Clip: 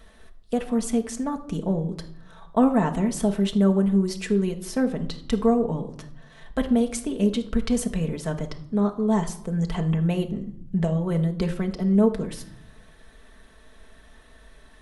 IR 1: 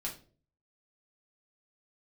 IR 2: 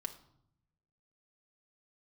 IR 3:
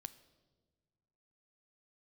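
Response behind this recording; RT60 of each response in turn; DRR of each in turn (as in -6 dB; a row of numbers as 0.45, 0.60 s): 2; not exponential, 0.70 s, 1.7 s; -3.5, 3.5, 13.0 dB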